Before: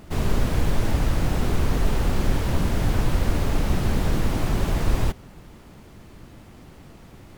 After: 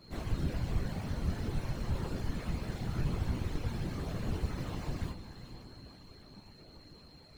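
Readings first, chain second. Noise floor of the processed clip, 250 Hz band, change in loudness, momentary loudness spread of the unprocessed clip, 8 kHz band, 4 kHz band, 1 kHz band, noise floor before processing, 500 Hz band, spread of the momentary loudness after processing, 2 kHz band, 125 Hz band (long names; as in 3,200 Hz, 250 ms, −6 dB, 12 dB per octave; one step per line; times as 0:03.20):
−56 dBFS, −11.5 dB, −12.0 dB, 1 LU, −16.0 dB, −12.5 dB, −14.5 dB, −47 dBFS, −13.5 dB, 19 LU, −14.0 dB, −11.0 dB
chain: running median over 3 samples
in parallel at 0 dB: downward compressor, threshold −26 dBFS, peak gain reduction 12 dB
on the sum: stiff-string resonator 120 Hz, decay 0.36 s, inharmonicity 0.002
feedback delay with all-pass diffusion 468 ms, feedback 54%, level −12 dB
steady tone 4,200 Hz −53 dBFS
random phases in short frames
level −6 dB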